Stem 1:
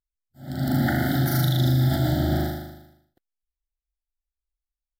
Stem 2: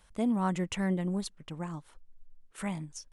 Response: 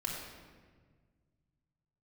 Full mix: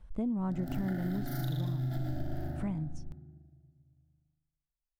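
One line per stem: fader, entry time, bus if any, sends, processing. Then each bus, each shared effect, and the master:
-5.5 dB, 0.00 s, send -12.5 dB, local Wiener filter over 15 samples; auto duck -12 dB, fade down 1.10 s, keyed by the second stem
-5.5 dB, 0.00 s, no send, tilt EQ -4 dB/octave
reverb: on, RT60 1.6 s, pre-delay 3 ms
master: compression, threshold -30 dBFS, peak gain reduction 9 dB

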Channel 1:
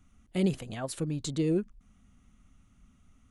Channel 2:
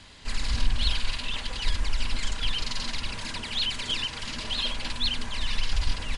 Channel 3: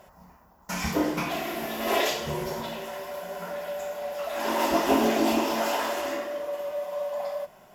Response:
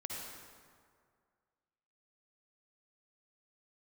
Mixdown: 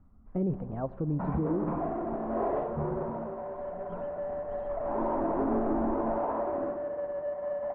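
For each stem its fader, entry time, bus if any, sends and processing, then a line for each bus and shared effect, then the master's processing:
+2.0 dB, 0.00 s, send -16 dB, none
-12.5 dB, 0.00 s, send -16 dB, gate -34 dBFS, range -8 dB; auto duck -23 dB, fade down 0.55 s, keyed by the first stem
-5.0 dB, 0.50 s, no send, square wave that keeps the level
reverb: on, RT60 2.1 s, pre-delay 48 ms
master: low-pass 1.1 kHz 24 dB/octave; peak limiter -22 dBFS, peak gain reduction 9 dB

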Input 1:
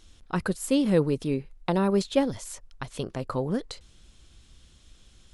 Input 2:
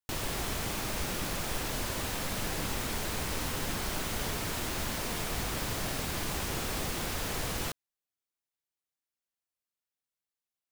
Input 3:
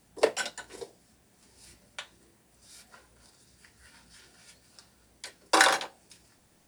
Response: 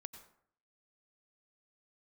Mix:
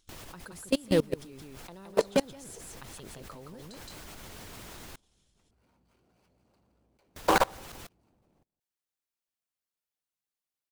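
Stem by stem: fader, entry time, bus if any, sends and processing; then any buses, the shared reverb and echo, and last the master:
-4.0 dB, 0.00 s, no send, echo send -4.5 dB, treble shelf 4.2 kHz +9 dB
-0.5 dB, 0.00 s, muted 4.79–7.16 s, no send, echo send -12 dB, auto duck -13 dB, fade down 0.50 s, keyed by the first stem
+2.0 dB, 1.75 s, send -11.5 dB, echo send -15 dB, median filter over 25 samples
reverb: on, RT60 0.60 s, pre-delay 83 ms
echo: delay 169 ms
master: level held to a coarse grid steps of 24 dB; harmonic-percussive split percussive +4 dB

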